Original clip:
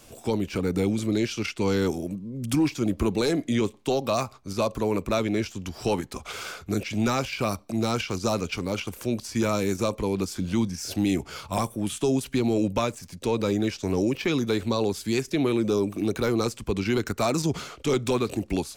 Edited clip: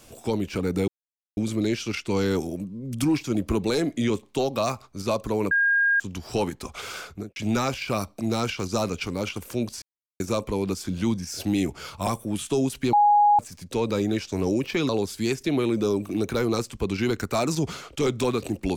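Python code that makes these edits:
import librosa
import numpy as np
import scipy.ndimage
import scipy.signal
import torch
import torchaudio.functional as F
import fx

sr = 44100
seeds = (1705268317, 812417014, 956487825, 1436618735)

y = fx.studio_fade_out(x, sr, start_s=6.57, length_s=0.3)
y = fx.edit(y, sr, fx.insert_silence(at_s=0.88, length_s=0.49),
    fx.bleep(start_s=5.02, length_s=0.49, hz=1620.0, db=-17.5),
    fx.silence(start_s=9.33, length_s=0.38),
    fx.bleep(start_s=12.44, length_s=0.46, hz=828.0, db=-14.0),
    fx.cut(start_s=14.4, length_s=0.36), tone=tone)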